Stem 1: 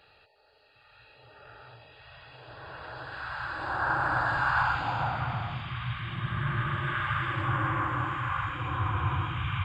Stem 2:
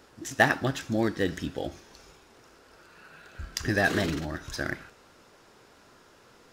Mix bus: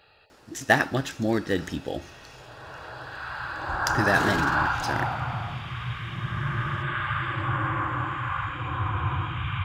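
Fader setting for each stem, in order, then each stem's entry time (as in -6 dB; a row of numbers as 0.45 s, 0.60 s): +1.5 dB, +1.5 dB; 0.00 s, 0.30 s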